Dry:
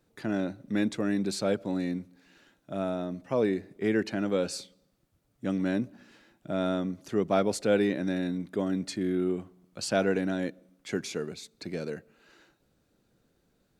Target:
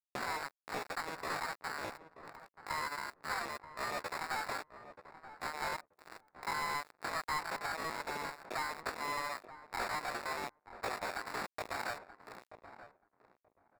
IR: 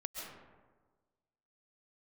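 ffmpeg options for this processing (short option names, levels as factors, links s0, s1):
-filter_complex "[0:a]aeval=exprs='if(lt(val(0),0),0.251*val(0),val(0))':c=same,highpass=f=650:w=0.5412,highpass=f=650:w=1.3066,highshelf=f=5300:g=3.5,asplit=2[s0][s1];[s1]alimiter=level_in=1.78:limit=0.0631:level=0:latency=1:release=48,volume=0.562,volume=1.06[s2];[s0][s2]amix=inputs=2:normalize=0,acompressor=threshold=0.00708:ratio=8,aeval=exprs='val(0)+0.000251*(sin(2*PI*60*n/s)+sin(2*PI*2*60*n/s)/2+sin(2*PI*3*60*n/s)/3+sin(2*PI*4*60*n/s)/4+sin(2*PI*5*60*n/s)/5)':c=same,flanger=delay=9.3:depth=4.5:regen=-24:speed=0.15:shape=triangular,acrusher=samples=23:mix=1:aa=0.000001,asetrate=70004,aresample=44100,atempo=0.629961,aeval=exprs='sgn(val(0))*max(abs(val(0))-0.00168,0)':c=same,asplit=2[s3][s4];[s4]highpass=f=720:p=1,volume=10,asoftclip=type=tanh:threshold=0.0168[s5];[s3][s5]amix=inputs=2:normalize=0,lowpass=f=5900:p=1,volume=0.501,asplit=2[s6][s7];[s7]adelay=931,lowpass=f=970:p=1,volume=0.282,asplit=2[s8][s9];[s9]adelay=931,lowpass=f=970:p=1,volume=0.18[s10];[s6][s8][s10]amix=inputs=3:normalize=0,volume=2.66"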